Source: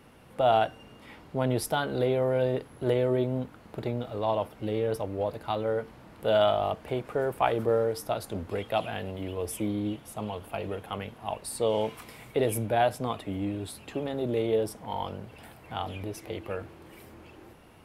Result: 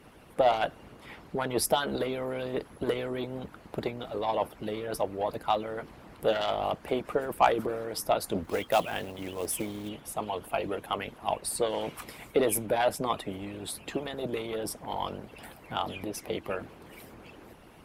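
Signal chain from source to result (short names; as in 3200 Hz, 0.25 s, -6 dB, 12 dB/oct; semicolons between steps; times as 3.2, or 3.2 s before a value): added harmonics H 5 -21 dB, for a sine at -10 dBFS; harmonic-percussive split harmonic -17 dB; 8.44–9.89 short-mantissa float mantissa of 2-bit; gain +3 dB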